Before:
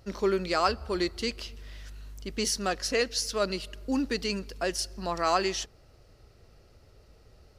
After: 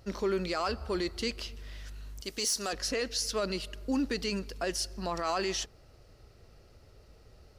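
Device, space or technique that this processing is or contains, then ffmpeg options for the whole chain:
soft clipper into limiter: -filter_complex "[0:a]asettb=1/sr,asplit=3[link_01][link_02][link_03];[link_01]atrim=end=2.214[link_04];[link_02]atrim=start=2.21:end=2.73,asetpts=PTS-STARTPTS,afade=type=in:duration=0.004:curve=qsin,afade=type=out:start_time=0.516:duration=0.004:curve=qsin,bass=frequency=250:gain=-11,treble=frequency=4000:gain=11[link_05];[link_03]atrim=start=2.726[link_06];[link_04][link_05]acrossfade=duration=0.004:curve1=hsin:curve2=qsin[link_07];[link_07][link_06]acrossfade=duration=0.004:curve1=qsin:curve2=hsin,asoftclip=type=tanh:threshold=-13.5dB,alimiter=limit=-22.5dB:level=0:latency=1:release=20"

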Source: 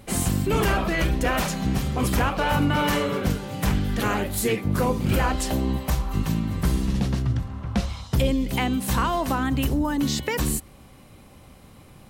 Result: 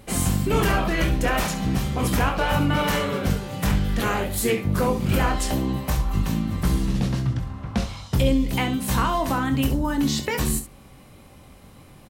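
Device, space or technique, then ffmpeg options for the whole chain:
slapback doubling: -filter_complex "[0:a]asplit=3[link_01][link_02][link_03];[link_02]adelay=22,volume=-8dB[link_04];[link_03]adelay=67,volume=-11.5dB[link_05];[link_01][link_04][link_05]amix=inputs=3:normalize=0"

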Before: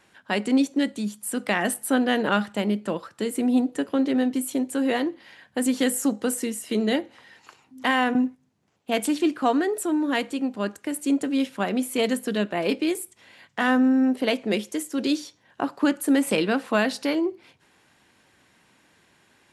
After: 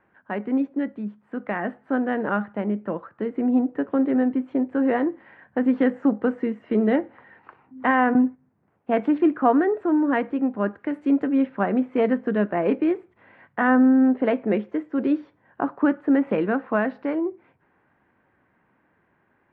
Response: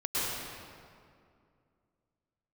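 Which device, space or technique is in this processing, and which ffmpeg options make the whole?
action camera in a waterproof case: -filter_complex "[0:a]asettb=1/sr,asplit=3[link_01][link_02][link_03];[link_01]atrim=end=10.794[link_04];[link_02]atrim=start=10.79:end=11.27,asetpts=PTS-STARTPTS,afade=type=in:duration=0.004:curve=qsin,afade=type=out:start_time=0.476:duration=0.004:curve=qsin,aemphasis=mode=production:type=75fm[link_05];[link_03]atrim=start=11.266[link_06];[link_04][link_05]acrossfade=duration=0.004:curve1=hsin:curve2=qsin[link_07];[link_07][link_06]acrossfade=duration=0.004:curve1=qsin:curve2=hsin,lowpass=frequency=1800:width=0.5412,lowpass=frequency=1800:width=1.3066,dynaudnorm=framelen=340:gausssize=21:maxgain=7dB,volume=-2.5dB" -ar 32000 -c:a aac -b:a 64k

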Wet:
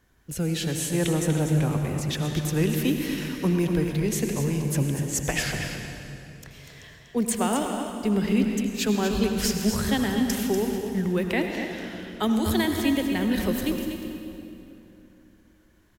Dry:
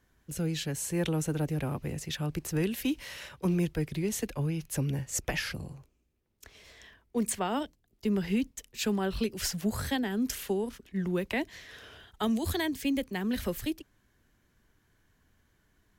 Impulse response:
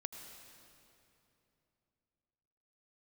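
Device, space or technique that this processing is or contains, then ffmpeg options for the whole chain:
cave: -filter_complex "[0:a]aecho=1:1:242:0.376[link_01];[1:a]atrim=start_sample=2205[link_02];[link_01][link_02]afir=irnorm=-1:irlink=0,volume=8dB"

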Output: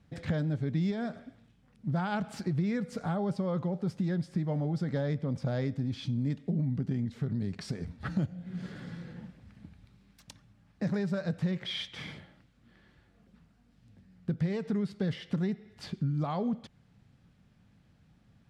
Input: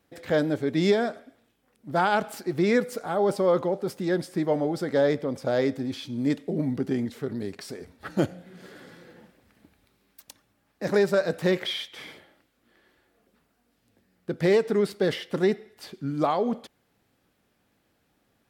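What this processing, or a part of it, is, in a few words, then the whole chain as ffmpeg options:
jukebox: -af "lowpass=6800,lowshelf=frequency=240:width_type=q:width=1.5:gain=12.5,acompressor=threshold=-28dB:ratio=5,volume=-1dB"

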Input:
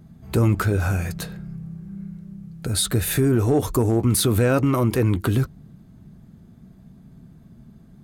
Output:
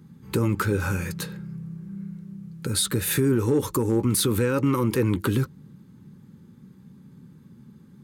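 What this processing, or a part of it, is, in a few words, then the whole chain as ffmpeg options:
PA system with an anti-feedback notch: -af "highpass=120,asuperstop=centerf=680:order=12:qfactor=3.2,alimiter=limit=-13dB:level=0:latency=1:release=176"

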